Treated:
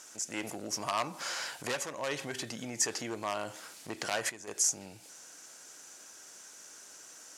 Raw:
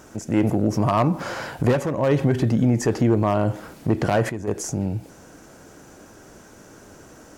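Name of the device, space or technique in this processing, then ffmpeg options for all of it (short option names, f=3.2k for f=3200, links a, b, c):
piezo pickup straight into a mixer: -af "lowpass=8.2k,aderivative,volume=6.5dB"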